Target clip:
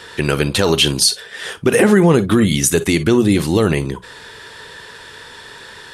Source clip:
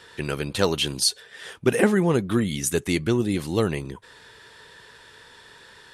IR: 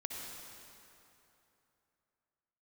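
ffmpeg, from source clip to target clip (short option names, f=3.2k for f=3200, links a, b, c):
-filter_complex "[0:a]asplit=2[a][b];[1:a]atrim=start_sample=2205,atrim=end_sample=4410,asetrate=70560,aresample=44100[c];[b][c]afir=irnorm=-1:irlink=0,volume=-1dB[d];[a][d]amix=inputs=2:normalize=0,alimiter=limit=-11.5dB:level=0:latency=1:release=61,bandreject=f=60:t=h:w=6,bandreject=f=120:t=h:w=6,bandreject=f=180:t=h:w=6,volume=9dB"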